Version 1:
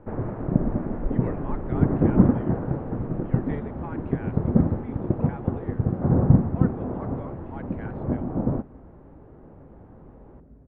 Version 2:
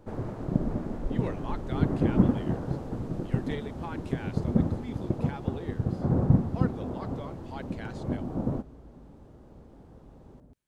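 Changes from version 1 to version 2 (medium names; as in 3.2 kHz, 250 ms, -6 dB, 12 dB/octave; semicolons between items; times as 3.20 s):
first sound -5.0 dB; second sound: entry -2.00 s; master: remove low-pass 2.1 kHz 24 dB/octave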